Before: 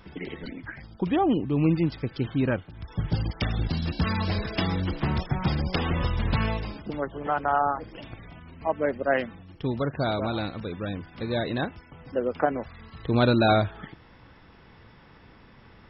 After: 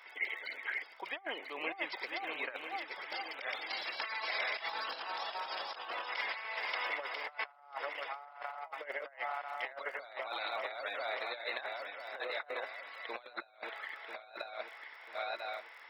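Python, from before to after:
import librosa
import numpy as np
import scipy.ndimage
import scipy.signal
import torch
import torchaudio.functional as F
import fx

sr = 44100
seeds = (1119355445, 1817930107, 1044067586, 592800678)

y = fx.reverse_delay_fb(x, sr, ms=496, feedback_pct=60, wet_db=-4)
y = fx.dmg_crackle(y, sr, seeds[0], per_s=49.0, level_db=-46.0)
y = scipy.signal.sosfilt(scipy.signal.butter(4, 640.0, 'highpass', fs=sr, output='sos'), y)
y = fx.over_compress(y, sr, threshold_db=-35.0, ratio=-0.5)
y = fx.peak_eq(y, sr, hz=2100.0, db=fx.steps((0.0, 11.5), (4.69, -4.5), (6.09, 11.5)), octaves=0.31)
y = F.gain(torch.from_numpy(y), -6.5).numpy()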